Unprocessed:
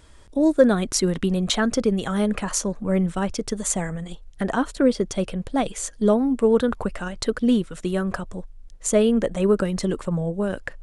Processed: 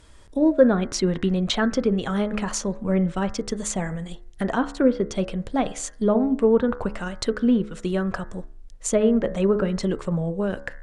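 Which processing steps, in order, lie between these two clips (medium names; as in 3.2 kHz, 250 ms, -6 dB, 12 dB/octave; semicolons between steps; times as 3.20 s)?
low-pass that closes with the level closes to 2 kHz, closed at -14.5 dBFS; de-hum 70.17 Hz, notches 30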